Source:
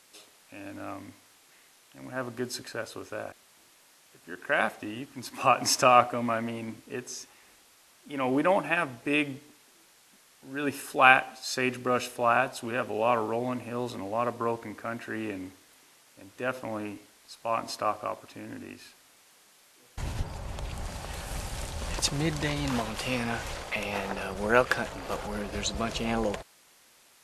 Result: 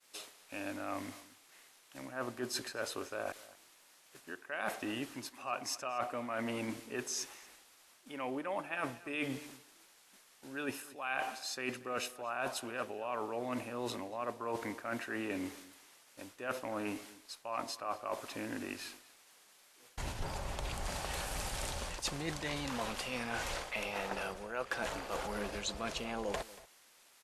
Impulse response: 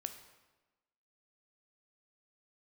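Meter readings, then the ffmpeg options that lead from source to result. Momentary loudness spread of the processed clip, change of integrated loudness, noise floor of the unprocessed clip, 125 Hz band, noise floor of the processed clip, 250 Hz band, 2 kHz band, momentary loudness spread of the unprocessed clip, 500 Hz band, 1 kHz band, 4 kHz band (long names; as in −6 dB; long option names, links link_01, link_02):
15 LU, −10.5 dB, −60 dBFS, −10.0 dB, −64 dBFS, −8.5 dB, −10.5 dB, 17 LU, −10.0 dB, −12.0 dB, −6.5 dB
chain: -filter_complex "[0:a]agate=range=-33dB:threshold=-52dB:ratio=3:detection=peak,equalizer=frequency=99:width_type=o:width=2.9:gain=-7.5,areverse,acompressor=threshold=-39dB:ratio=12,areverse,asplit=2[link_01][link_02];[link_02]adelay=233.2,volume=-19dB,highshelf=frequency=4000:gain=-5.25[link_03];[link_01][link_03]amix=inputs=2:normalize=0,volume=4.5dB"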